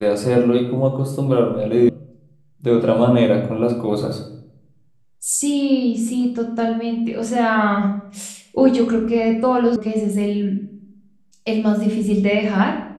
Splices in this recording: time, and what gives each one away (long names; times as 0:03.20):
0:01.89: cut off before it has died away
0:09.76: cut off before it has died away